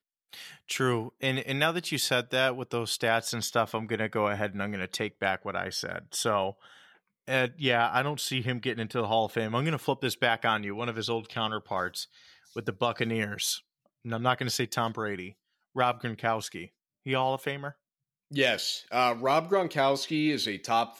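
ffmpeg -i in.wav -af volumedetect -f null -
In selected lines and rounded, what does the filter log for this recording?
mean_volume: -30.1 dB
max_volume: -10.5 dB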